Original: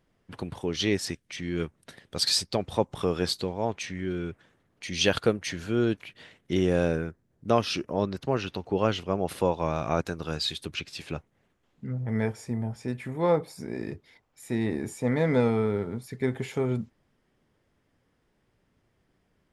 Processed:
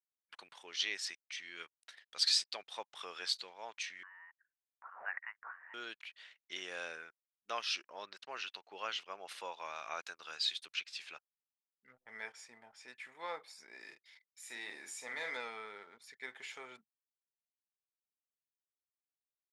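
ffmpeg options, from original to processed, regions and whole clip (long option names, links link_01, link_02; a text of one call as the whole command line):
ffmpeg -i in.wav -filter_complex "[0:a]asettb=1/sr,asplit=3[link_01][link_02][link_03];[link_01]atrim=end=4.034[link_04];[link_02]atrim=start=4.03:end=5.74,asetpts=PTS-STARTPTS,afade=type=in:duration=0.004:curve=qsin,afade=type=out:start_time=1.706:duration=0.004:curve=qsin,highpass=frequency=1400:width=0.5412,highpass=frequency=1400:width=1.3066,lowpass=frequency=2800:width_type=q:width=0.5098,lowpass=frequency=2800:width_type=q:width=0.6013,lowpass=frequency=2800:width_type=q:width=0.9,lowpass=frequency=2800:width_type=q:width=2.563,afreqshift=-3300[link_05];[link_03]atrim=start=5.736[link_06];[link_04][link_05]acrossfade=duration=0.004:curve1=hsin:curve2=qsin[link_07];[link_07][link_06]acrossfade=duration=0.004:curve1=qsin:curve2=hsin,asettb=1/sr,asplit=3[link_08][link_09][link_10];[link_08]atrim=end=13.804[link_11];[link_09]atrim=start=13.8:end=15.37,asetpts=PTS-STARTPTS,afade=type=in:duration=0.004:curve=qsin,afade=type=out:start_time=1.566:duration=0.004:curve=qsin,highshelf=frequency=5700:gain=8.5,asplit=2[link_12][link_13];[link_13]adelay=47,volume=-7dB[link_14];[link_12][link_14]amix=inputs=2:normalize=0,atrim=end_sample=69237[link_15];[link_10]atrim=start=15.366[link_16];[link_11][link_15]acrossfade=duration=0.004:curve1=hsin:curve2=qsin[link_17];[link_17][link_16]acrossfade=duration=0.004:curve1=qsin:curve2=hsin,highpass=1500,anlmdn=0.0000398,lowpass=6800,volume=-4dB" out.wav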